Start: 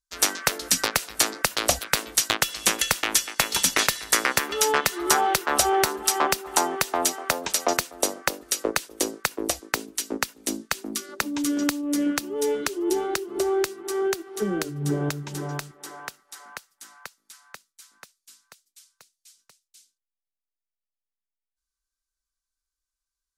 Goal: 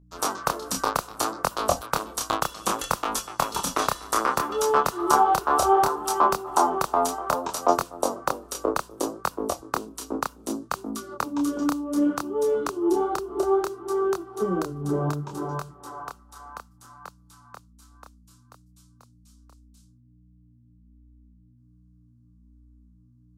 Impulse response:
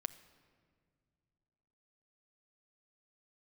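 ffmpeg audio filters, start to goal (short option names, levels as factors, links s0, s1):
-af "highshelf=f=1500:t=q:w=3:g=-8.5,aeval=exprs='val(0)+0.00224*(sin(2*PI*60*n/s)+sin(2*PI*2*60*n/s)/2+sin(2*PI*3*60*n/s)/3+sin(2*PI*4*60*n/s)/4+sin(2*PI*5*60*n/s)/5)':c=same,flanger=delay=22.5:depth=7.8:speed=0.64,volume=1.5"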